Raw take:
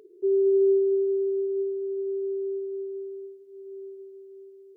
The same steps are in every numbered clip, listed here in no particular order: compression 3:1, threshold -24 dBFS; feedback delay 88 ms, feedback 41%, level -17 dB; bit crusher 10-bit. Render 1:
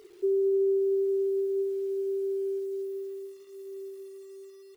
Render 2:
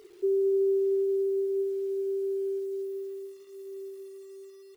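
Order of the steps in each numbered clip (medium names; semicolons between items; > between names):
feedback delay > bit crusher > compression; feedback delay > compression > bit crusher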